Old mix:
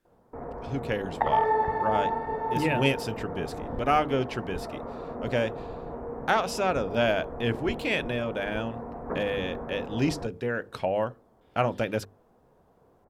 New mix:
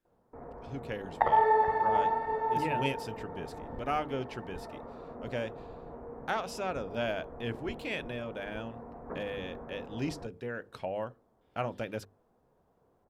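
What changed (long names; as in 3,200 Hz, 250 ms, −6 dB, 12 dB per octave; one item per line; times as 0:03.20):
speech −8.5 dB
first sound −8.0 dB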